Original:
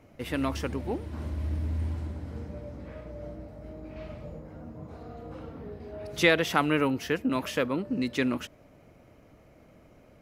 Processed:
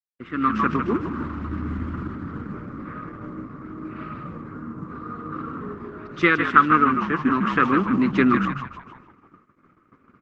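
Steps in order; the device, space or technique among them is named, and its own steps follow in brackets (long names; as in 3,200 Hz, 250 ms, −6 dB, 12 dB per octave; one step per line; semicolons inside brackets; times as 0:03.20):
drawn EQ curve 370 Hz 0 dB, 770 Hz −27 dB, 1,200 Hz +13 dB, 1,800 Hz −1 dB, 6,100 Hz −21 dB, 9,800 Hz −27 dB, 14,000 Hz −3 dB
echo with shifted repeats 152 ms, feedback 49%, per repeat −57 Hz, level −6 dB
video call (high-pass filter 160 Hz 12 dB per octave; automatic gain control gain up to 11 dB; noise gate −44 dBFS, range −53 dB; Opus 12 kbit/s 48,000 Hz)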